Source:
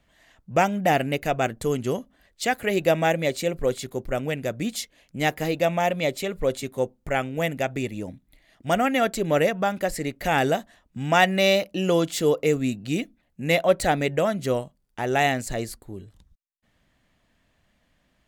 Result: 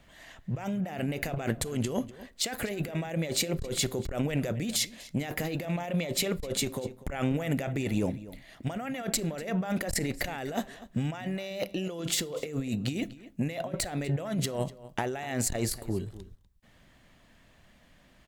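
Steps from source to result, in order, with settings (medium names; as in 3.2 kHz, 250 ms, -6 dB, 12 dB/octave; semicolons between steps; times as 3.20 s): compressor with a negative ratio -32 dBFS, ratio -1; echo from a far wall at 42 m, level -17 dB; on a send at -18 dB: reverberation RT60 0.40 s, pre-delay 3 ms; on the sum: transformer saturation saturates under 340 Hz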